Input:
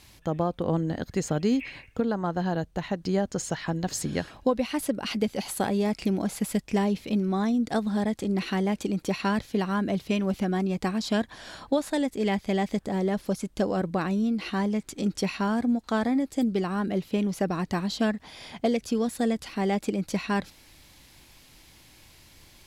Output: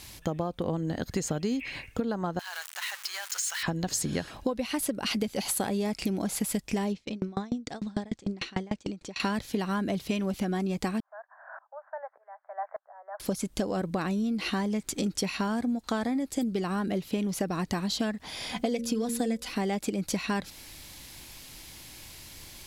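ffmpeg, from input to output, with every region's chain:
-filter_complex "[0:a]asettb=1/sr,asplit=3[s0][s1][s2];[s0]atrim=end=2.394[s3];[s1]atrim=start=2.39:end=3.63,asetpts=PTS-STARTPTS,afade=t=in:d=0.004:c=qsin,afade=t=out:st=1.236:d=0.004:c=qsin,aeval=exprs='val(0)+0.5*0.0168*sgn(val(0))':c=same,highpass=f=1200:w=0.5412,highpass=f=1200:w=1.3066,acompressor=threshold=0.0141:ratio=2.5:attack=3.2:release=140:knee=1:detection=peak[s4];[s2]atrim=start=3.626[s5];[s3][s4]acrossfade=d=0.004:c1=hsin:c2=qsin[s6];[s6][s5]acrossfade=d=0.004:c1=qsin:c2=hsin,asettb=1/sr,asplit=3[s7][s8][s9];[s7]atrim=end=6.924[s10];[s8]atrim=start=6.92:end=9.2,asetpts=PTS-STARTPTS,afade=t=in:d=0.004:c=qsin,afade=t=out:st=2.276:d=0.004:c=qsin,lowpass=f=7600:w=0.5412,lowpass=f=7600:w=1.3066,aeval=exprs='val(0)*pow(10,-32*if(lt(mod(6.7*n/s,1),2*abs(6.7)/1000),1-mod(6.7*n/s,1)/(2*abs(6.7)/1000),(mod(6.7*n/s,1)-2*abs(6.7)/1000)/(1-2*abs(6.7)/1000))/20)':c=same[s11];[s9]atrim=start=9.196[s12];[s10][s11]acrossfade=d=0.004:c1=hsin:c2=qsin[s13];[s13][s12]acrossfade=d=0.004:c1=qsin:c2=hsin,asettb=1/sr,asplit=3[s14][s15][s16];[s14]atrim=end=11.004[s17];[s15]atrim=start=11:end=13.2,asetpts=PTS-STARTPTS,afade=t=in:d=0.004:c=qsin,afade=t=out:st=2.196:d=0.004:c=qsin,asuperpass=centerf=1000:order=12:qfactor=0.95,aeval=exprs='val(0)*pow(10,-25*if(lt(mod(-1.7*n/s,1),2*abs(-1.7)/1000),1-mod(-1.7*n/s,1)/(2*abs(-1.7)/1000),(mod(-1.7*n/s,1)-2*abs(-1.7)/1000)/(1-2*abs(-1.7)/1000))/20)':c=same[s18];[s16]atrim=start=13.196[s19];[s17][s18]acrossfade=d=0.004:c1=hsin:c2=qsin[s20];[s20][s19]acrossfade=d=0.004:c1=qsin:c2=hsin,asettb=1/sr,asplit=3[s21][s22][s23];[s21]atrim=end=18.494[s24];[s22]atrim=start=18.49:end=19.52,asetpts=PTS-STARTPTS,afade=t=in:d=0.004:c=qsin,afade=t=out:st=1.026:d=0.004:c=qsin,aecho=1:1:4:0.71,atrim=end_sample=45423,bandreject=f=77.7:t=h:w=4,bandreject=f=155.4:t=h:w=4,bandreject=f=233.1:t=h:w=4,bandreject=f=310.8:t=h:w=4,bandreject=f=388.5:t=h:w=4,bandreject=f=466.2:t=h:w=4,bandreject=f=543.9:t=h:w=4,bandreject=f=621.6:t=h:w=4[s25];[s23]atrim=start=19.516[s26];[s24][s25]acrossfade=d=0.004:c1=hsin:c2=qsin[s27];[s27][s26]acrossfade=d=0.004:c1=qsin:c2=hsin,highshelf=f=4500:g=6.5,acompressor=threshold=0.0282:ratio=6,volume=1.68"

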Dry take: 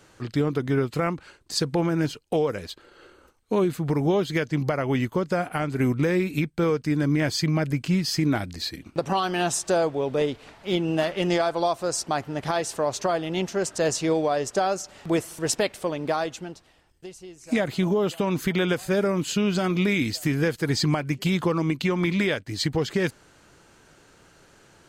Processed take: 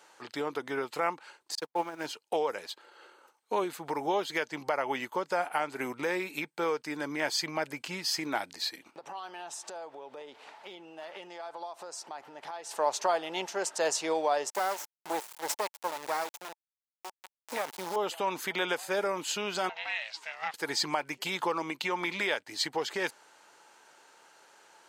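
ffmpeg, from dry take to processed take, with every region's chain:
-filter_complex "[0:a]asettb=1/sr,asplit=3[s0][s1][s2];[s0]atrim=end=1.554[s3];[s1]atrim=start=1.55:end=2.06,asetpts=PTS-STARTPTS,afade=t=in:d=0.004:c=qsin,afade=t=out:st=0.506:d=0.004:c=qsin,aeval=exprs='val(0)+0.5*0.015*sgn(val(0))':c=same,agate=range=0.00316:threshold=0.0794:ratio=16:release=100:detection=peak[s4];[s2]atrim=start=2.056[s5];[s3][s4]acrossfade=d=0.004:c1=hsin:c2=qsin[s6];[s6][s5]acrossfade=d=0.004:c1=qsin:c2=hsin,asettb=1/sr,asplit=3[s7][s8][s9];[s7]atrim=end=8.914[s10];[s8]atrim=start=8.91:end=12.71,asetpts=PTS-STARTPTS,afade=t=in:d=0.004:c=qsin,afade=t=out:st=3.796:d=0.004:c=qsin,highshelf=f=6700:g=-6,acompressor=threshold=0.02:ratio=16:attack=3.2:release=140:knee=1:detection=peak[s11];[s9]atrim=start=12.706[s12];[s10][s11]acrossfade=d=0.004:c1=hsin:c2=qsin[s13];[s13][s12]acrossfade=d=0.004:c1=qsin:c2=hsin,asettb=1/sr,asplit=3[s14][s15][s16];[s14]atrim=end=14.504[s17];[s15]atrim=start=14.5:end=17.96,asetpts=PTS-STARTPTS,afade=t=in:d=0.004:c=qsin,afade=t=out:st=3.456:d=0.004:c=qsin,equalizer=f=2900:t=o:w=0.72:g=-8.5,acrusher=bits=3:dc=4:mix=0:aa=0.000001[s18];[s16]atrim=start=17.956[s19];[s17][s18]acrossfade=d=0.004:c1=hsin:c2=qsin[s20];[s20][s19]acrossfade=d=0.004:c1=qsin:c2=hsin,asettb=1/sr,asplit=3[s21][s22][s23];[s21]atrim=end=19.694[s24];[s22]atrim=start=19.69:end=20.54,asetpts=PTS-STARTPTS,afade=t=in:d=0.004:c=qsin,afade=t=out:st=0.846:d=0.004:c=qsin,highpass=720,lowpass=3800,aeval=exprs='val(0)*sin(2*PI*320*n/s)':c=same[s25];[s23]atrim=start=20.536[s26];[s24][s25]acrossfade=d=0.004:c1=hsin:c2=qsin[s27];[s27][s26]acrossfade=d=0.004:c1=qsin:c2=hsin,highpass=550,equalizer=f=880:t=o:w=0.25:g=9,volume=0.75"

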